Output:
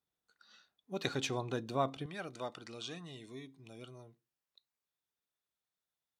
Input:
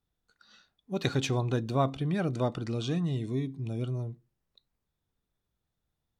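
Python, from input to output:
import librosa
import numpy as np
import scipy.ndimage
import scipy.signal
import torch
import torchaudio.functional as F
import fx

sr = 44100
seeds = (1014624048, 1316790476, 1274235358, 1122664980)

y = fx.highpass(x, sr, hz=fx.steps((0.0, 350.0), (2.06, 1200.0)), slope=6)
y = y * 10.0 ** (-3.5 / 20.0)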